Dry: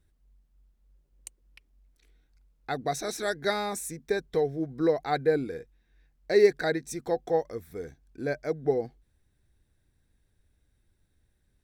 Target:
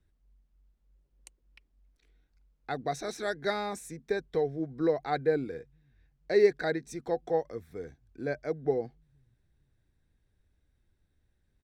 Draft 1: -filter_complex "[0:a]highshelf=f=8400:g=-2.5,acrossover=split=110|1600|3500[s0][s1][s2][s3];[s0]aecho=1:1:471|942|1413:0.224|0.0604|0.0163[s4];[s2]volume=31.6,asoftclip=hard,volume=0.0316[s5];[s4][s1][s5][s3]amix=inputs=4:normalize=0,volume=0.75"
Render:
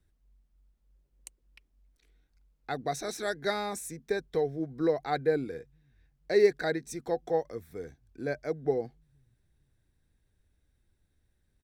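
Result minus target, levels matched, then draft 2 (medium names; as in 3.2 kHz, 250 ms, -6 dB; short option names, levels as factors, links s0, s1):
8 kHz band +5.0 dB
-filter_complex "[0:a]highshelf=f=8400:g=-14,acrossover=split=110|1600|3500[s0][s1][s2][s3];[s0]aecho=1:1:471|942|1413:0.224|0.0604|0.0163[s4];[s2]volume=31.6,asoftclip=hard,volume=0.0316[s5];[s4][s1][s5][s3]amix=inputs=4:normalize=0,volume=0.75"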